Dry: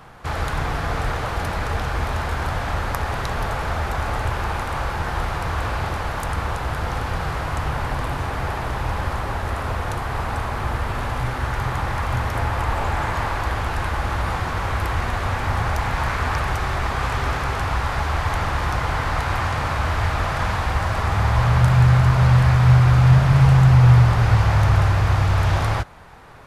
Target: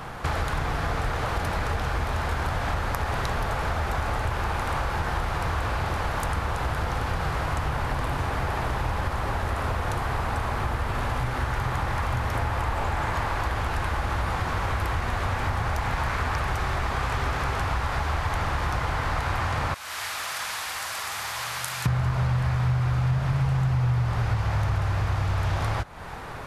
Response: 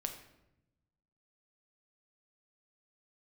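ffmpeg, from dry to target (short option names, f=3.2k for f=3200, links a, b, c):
-filter_complex "[0:a]asettb=1/sr,asplit=3[a][b][c];[a]atrim=end=19.744[d];[b]atrim=start=19.74:end=21.86,asetpts=PTS-STARTPTS,afade=t=in:d=0.004:c=qsin,afade=t=out:st=2.116:d=0.004:c=qsin,aderivative[e];[c]atrim=start=21.856[f];[d][e]acrossfade=d=0.004:c1=hsin:c2=qsin[g];[g][f]acrossfade=d=0.004:c1=qsin:c2=hsin,acompressor=threshold=-33dB:ratio=4,volume=7.5dB"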